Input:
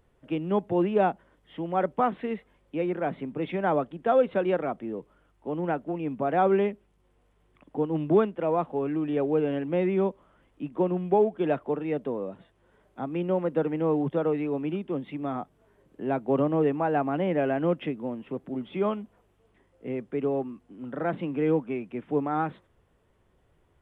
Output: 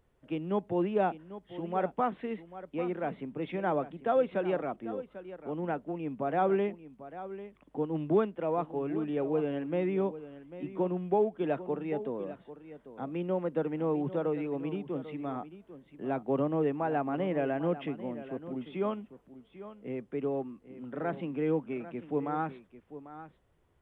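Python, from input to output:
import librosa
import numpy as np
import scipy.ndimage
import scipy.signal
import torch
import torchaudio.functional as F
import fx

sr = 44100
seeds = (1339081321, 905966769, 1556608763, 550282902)

y = x + 10.0 ** (-14.0 / 20.0) * np.pad(x, (int(795 * sr / 1000.0), 0))[:len(x)]
y = y * librosa.db_to_amplitude(-5.0)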